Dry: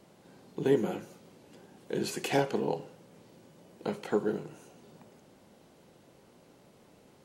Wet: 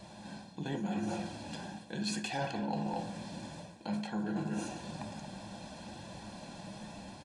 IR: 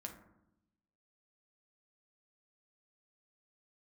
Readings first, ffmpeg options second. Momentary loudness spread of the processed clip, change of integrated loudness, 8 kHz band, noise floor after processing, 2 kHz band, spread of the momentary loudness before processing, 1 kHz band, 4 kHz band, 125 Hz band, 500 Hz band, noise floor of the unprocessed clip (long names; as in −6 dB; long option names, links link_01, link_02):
11 LU, −7.5 dB, 0.0 dB, −52 dBFS, −2.0 dB, 18 LU, −0.5 dB, +1.0 dB, +1.0 dB, −11.0 dB, −60 dBFS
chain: -filter_complex "[0:a]dynaudnorm=framelen=190:gausssize=5:maxgain=4dB,asplit=2[link_01][link_02];[link_02]adelay=230,highpass=300,lowpass=3400,asoftclip=type=hard:threshold=-18dB,volume=-12dB[link_03];[link_01][link_03]amix=inputs=2:normalize=0,aresample=22050,aresample=44100,aecho=1:1:1.2:0.76,asplit=2[link_04][link_05];[link_05]equalizer=frequency=4100:width_type=o:width=0.88:gain=9[link_06];[1:a]atrim=start_sample=2205,afade=type=out:start_time=0.34:duration=0.01,atrim=end_sample=15435[link_07];[link_06][link_07]afir=irnorm=-1:irlink=0,volume=4dB[link_08];[link_04][link_08]amix=inputs=2:normalize=0,asoftclip=type=tanh:threshold=-4.5dB,flanger=delay=1.6:depth=5.1:regen=-58:speed=0.82:shape=triangular,areverse,acompressor=threshold=-38dB:ratio=10,areverse,volume=5dB"